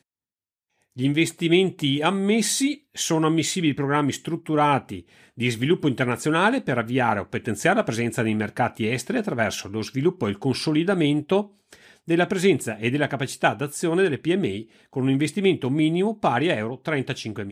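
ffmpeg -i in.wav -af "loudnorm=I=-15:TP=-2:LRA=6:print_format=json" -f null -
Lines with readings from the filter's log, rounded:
"input_i" : "-23.2",
"input_tp" : "-6.1",
"input_lra" : "1.8",
"input_thresh" : "-33.5",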